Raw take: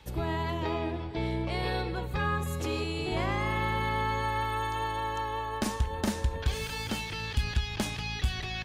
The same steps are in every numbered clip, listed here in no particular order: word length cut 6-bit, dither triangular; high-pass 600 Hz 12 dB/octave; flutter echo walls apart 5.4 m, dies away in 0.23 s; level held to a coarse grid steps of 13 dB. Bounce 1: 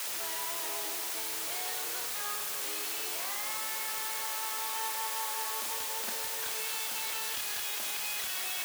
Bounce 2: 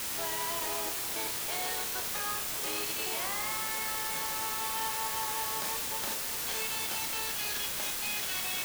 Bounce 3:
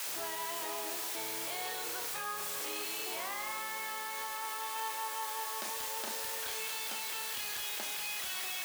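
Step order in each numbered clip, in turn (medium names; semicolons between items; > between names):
level held to a coarse grid > flutter echo > word length cut > high-pass; high-pass > level held to a coarse grid > word length cut > flutter echo; word length cut > high-pass > level held to a coarse grid > flutter echo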